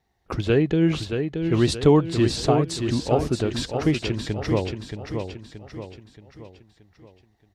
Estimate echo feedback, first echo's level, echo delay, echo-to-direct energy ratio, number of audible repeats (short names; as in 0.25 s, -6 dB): 45%, -6.5 dB, 0.626 s, -5.5 dB, 5